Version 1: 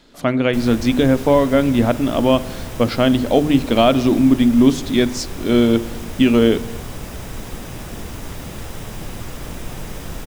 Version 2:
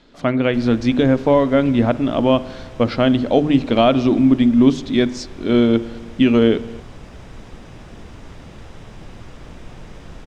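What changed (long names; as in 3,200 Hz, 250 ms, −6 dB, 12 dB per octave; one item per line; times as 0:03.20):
background −7.0 dB
master: add high-frequency loss of the air 100 metres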